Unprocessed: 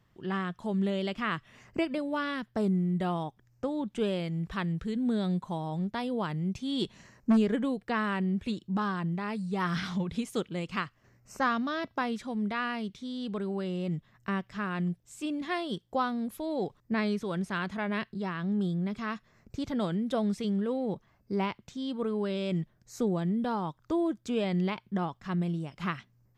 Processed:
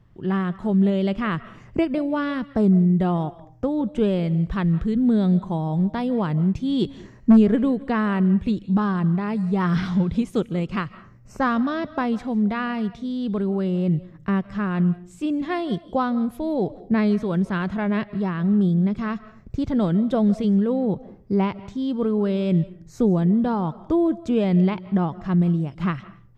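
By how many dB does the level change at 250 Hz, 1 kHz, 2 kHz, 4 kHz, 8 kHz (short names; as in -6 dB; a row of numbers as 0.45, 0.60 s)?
+10.5 dB, +5.0 dB, +3.0 dB, +0.5 dB, n/a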